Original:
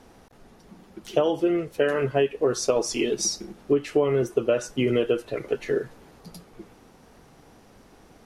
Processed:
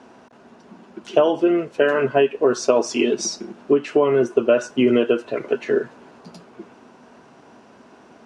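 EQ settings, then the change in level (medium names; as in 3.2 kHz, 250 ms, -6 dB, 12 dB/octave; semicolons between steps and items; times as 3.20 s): cabinet simulation 130–8200 Hz, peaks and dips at 240 Hz +9 dB, 380 Hz +6 dB, 640 Hz +8 dB, 1 kHz +9 dB, 1.5 kHz +8 dB, 2.7 kHz +6 dB; 0.0 dB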